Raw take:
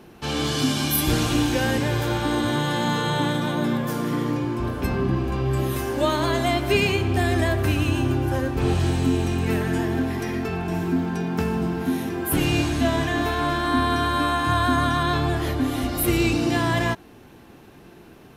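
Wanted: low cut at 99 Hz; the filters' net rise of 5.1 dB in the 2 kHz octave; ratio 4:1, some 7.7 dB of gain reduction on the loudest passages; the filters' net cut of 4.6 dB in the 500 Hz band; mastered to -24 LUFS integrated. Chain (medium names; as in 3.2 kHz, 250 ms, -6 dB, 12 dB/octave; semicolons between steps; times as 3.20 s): high-pass 99 Hz; peaking EQ 500 Hz -7.5 dB; peaking EQ 2 kHz +7 dB; compression 4:1, threshold -26 dBFS; trim +4.5 dB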